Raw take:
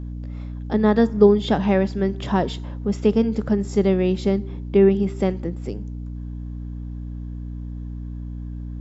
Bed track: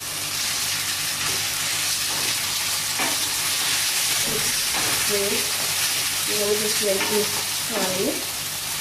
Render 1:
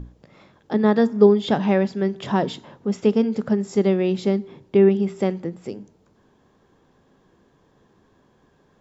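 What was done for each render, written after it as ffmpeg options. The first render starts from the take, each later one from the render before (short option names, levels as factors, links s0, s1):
-af "bandreject=f=60:t=h:w=6,bandreject=f=120:t=h:w=6,bandreject=f=180:t=h:w=6,bandreject=f=240:t=h:w=6,bandreject=f=300:t=h:w=6"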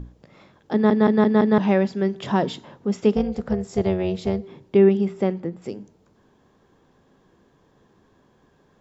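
-filter_complex "[0:a]asplit=3[s0][s1][s2];[s0]afade=t=out:st=3.15:d=0.02[s3];[s1]tremolo=f=280:d=0.71,afade=t=in:st=3.15:d=0.02,afade=t=out:st=4.42:d=0.02[s4];[s2]afade=t=in:st=4.42:d=0.02[s5];[s3][s4][s5]amix=inputs=3:normalize=0,asettb=1/sr,asplit=3[s6][s7][s8];[s6]atrim=end=5.084[s9];[s7]atrim=start=5.08:end=5.62,asetpts=PTS-STARTPTS,afade=t=in:d=0.004:c=qsin,afade=t=out:st=0.536:d=0.004:c=qsin,highshelf=f=4400:g=-11[s10];[s8]atrim=start=5.616[s11];[s9][s10]acrossfade=d=0.004:c1=hsin:c2=qsin[s12];[s12][s11]acrossfade=d=0.004:c1=qsin:c2=hsin,asplit=6[s13][s14][s15][s16][s17][s18];[s13]atrim=end=0.902[s19];[s14]atrim=start=0.728:end=0.902[s20];[s15]atrim=start=0.728:end=0.902[s21];[s16]atrim=start=0.728:end=0.902[s22];[s17]atrim=start=0.728:end=0.902[s23];[s18]atrim=start=1.578[s24];[s19][s20]acrossfade=d=0.004:c1=hsin:c2=hsin[s25];[s25][s21]acrossfade=d=0.004:c1=hsin:c2=hsin[s26];[s26][s22]acrossfade=d=0.004:c1=hsin:c2=hsin[s27];[s27][s23]acrossfade=d=0.004:c1=hsin:c2=hsin[s28];[s28][s24]acrossfade=d=0.004:c1=hsin:c2=hsin"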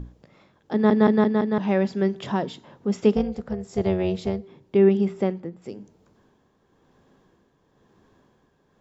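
-af "tremolo=f=0.99:d=0.5"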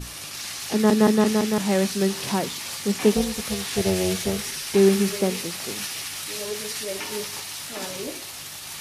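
-filter_complex "[1:a]volume=0.355[s0];[0:a][s0]amix=inputs=2:normalize=0"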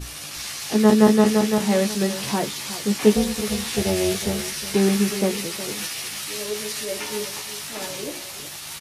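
-filter_complex "[0:a]asplit=2[s0][s1];[s1]adelay=14,volume=0.562[s2];[s0][s2]amix=inputs=2:normalize=0,aecho=1:1:365:0.211"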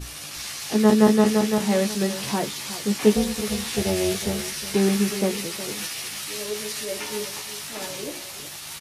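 -af "volume=0.841"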